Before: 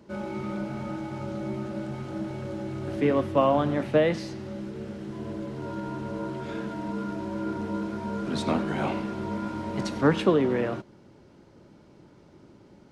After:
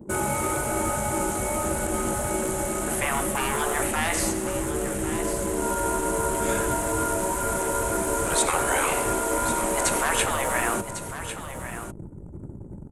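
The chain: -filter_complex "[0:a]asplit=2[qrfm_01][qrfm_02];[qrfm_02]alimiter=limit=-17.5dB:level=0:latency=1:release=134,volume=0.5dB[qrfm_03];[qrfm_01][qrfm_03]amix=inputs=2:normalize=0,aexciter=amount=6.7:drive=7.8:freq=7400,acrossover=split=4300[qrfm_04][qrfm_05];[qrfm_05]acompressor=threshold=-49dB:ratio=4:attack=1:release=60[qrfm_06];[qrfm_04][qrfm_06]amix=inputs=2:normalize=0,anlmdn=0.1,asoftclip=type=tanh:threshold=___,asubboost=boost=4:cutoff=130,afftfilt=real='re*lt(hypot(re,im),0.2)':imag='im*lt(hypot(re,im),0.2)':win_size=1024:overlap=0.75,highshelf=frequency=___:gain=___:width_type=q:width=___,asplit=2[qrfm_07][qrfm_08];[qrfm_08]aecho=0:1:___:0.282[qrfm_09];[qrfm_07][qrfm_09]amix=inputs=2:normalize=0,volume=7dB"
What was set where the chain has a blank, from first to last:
-11.5dB, 5700, 12, 1.5, 1100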